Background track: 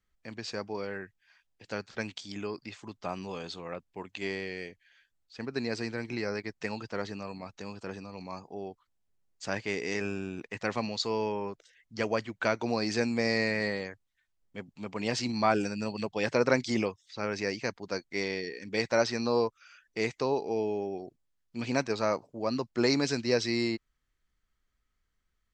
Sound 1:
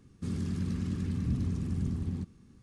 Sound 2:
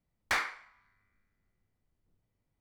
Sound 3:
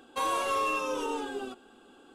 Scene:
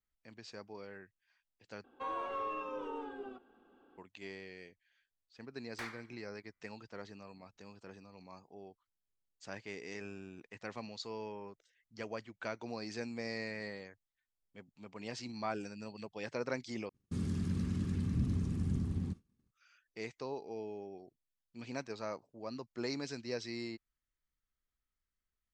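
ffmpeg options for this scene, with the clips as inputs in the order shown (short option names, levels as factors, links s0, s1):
-filter_complex "[0:a]volume=0.237[s0];[3:a]lowpass=1900[s1];[1:a]agate=range=0.0224:threshold=0.00562:ratio=3:release=100:detection=peak[s2];[s0]asplit=3[s3][s4][s5];[s3]atrim=end=1.844[s6];[s1]atrim=end=2.14,asetpts=PTS-STARTPTS,volume=0.355[s7];[s4]atrim=start=3.976:end=16.894[s8];[s2]atrim=end=2.62,asetpts=PTS-STARTPTS,volume=0.75[s9];[s5]atrim=start=19.506[s10];[2:a]atrim=end=2.6,asetpts=PTS-STARTPTS,volume=0.188,afade=t=in:d=0.004:c=hsin,afade=t=out:st=2.596:d=0.004:c=hsin,adelay=5480[s11];[s6][s7]acrossfade=d=0.004:c1=hsin:c2=hsin[s12];[s12][s8]acrossfade=d=0.004:c1=hsin:c2=hsin[s13];[s13][s9]acrossfade=d=0.004:c1=hsin:c2=hsin[s14];[s14][s10]acrossfade=d=0.004:c1=hsin:c2=hsin[s15];[s15][s11]amix=inputs=2:normalize=0"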